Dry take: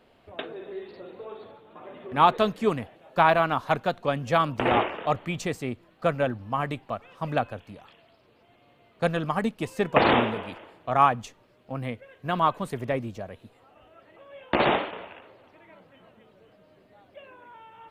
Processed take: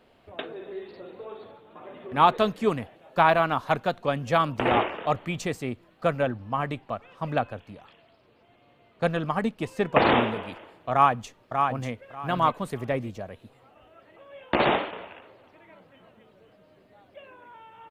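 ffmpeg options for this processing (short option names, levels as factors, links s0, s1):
-filter_complex "[0:a]asettb=1/sr,asplit=3[s0][s1][s2];[s0]atrim=end=6.224[s3];[s1]atrim=start=6.22:end=10.15,asetpts=PTS-STARTPTS,afade=t=in:d=0.004:c=qsin,afade=t=out:st=3.926:d=0.004:c=qsin,highshelf=f=6700:g=-6.5[s4];[s2]atrim=start=10.146[s5];[s3][s4]acrossfade=d=0.004:c1=hsin:c2=qsin[s6];[s6][s5]acrossfade=d=0.004:c1=qsin:c2=hsin,asplit=2[s7][s8];[s8]afade=t=in:st=10.92:d=0.01,afade=t=out:st=11.92:d=0.01,aecho=0:1:590|1180|1770:0.562341|0.112468|0.0224937[s9];[s7][s9]amix=inputs=2:normalize=0"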